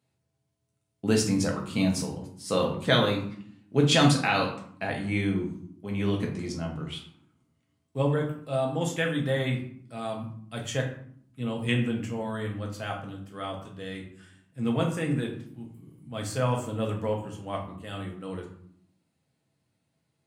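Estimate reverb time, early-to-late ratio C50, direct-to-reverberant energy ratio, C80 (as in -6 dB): 0.65 s, 7.5 dB, 0.0 dB, 11.0 dB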